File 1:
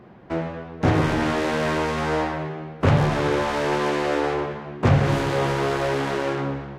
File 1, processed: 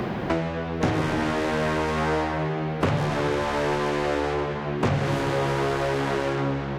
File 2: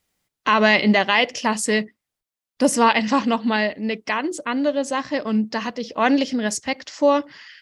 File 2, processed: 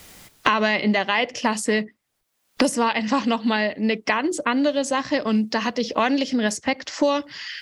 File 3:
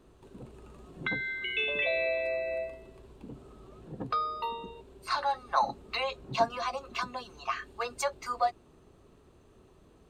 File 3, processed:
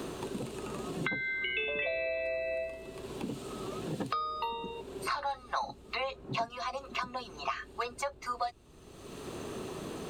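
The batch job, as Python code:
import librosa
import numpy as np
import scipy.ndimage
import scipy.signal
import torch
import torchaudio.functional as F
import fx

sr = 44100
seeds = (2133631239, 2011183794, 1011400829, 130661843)

y = fx.band_squash(x, sr, depth_pct=100)
y = F.gain(torch.from_numpy(y), -2.5).numpy()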